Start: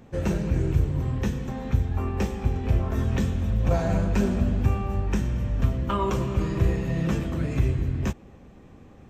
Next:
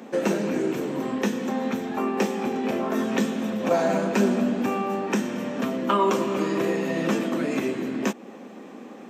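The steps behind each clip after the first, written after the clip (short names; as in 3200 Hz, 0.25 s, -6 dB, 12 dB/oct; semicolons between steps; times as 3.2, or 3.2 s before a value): Chebyshev high-pass 220 Hz, order 4; in parallel at +2.5 dB: compressor, threshold -38 dBFS, peak gain reduction 15 dB; on the sum: gain +4 dB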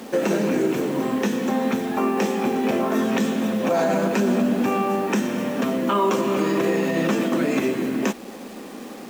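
limiter -16.5 dBFS, peak gain reduction 6.5 dB; requantised 8-bit, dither none; gain +4.5 dB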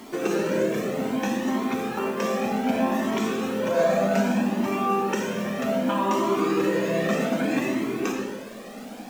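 digital reverb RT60 1.4 s, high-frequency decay 0.75×, pre-delay 10 ms, DRR 0.5 dB; cascading flanger rising 0.64 Hz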